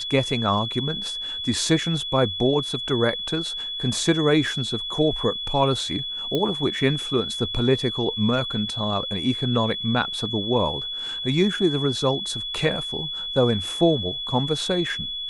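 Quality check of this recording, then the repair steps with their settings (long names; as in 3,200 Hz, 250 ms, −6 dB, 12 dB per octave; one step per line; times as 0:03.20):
whistle 3,400 Hz −28 dBFS
0:06.35: click −12 dBFS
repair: click removal
notch filter 3,400 Hz, Q 30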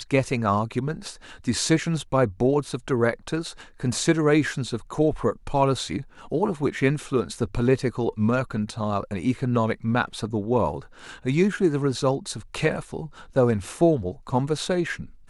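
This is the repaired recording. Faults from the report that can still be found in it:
none of them is left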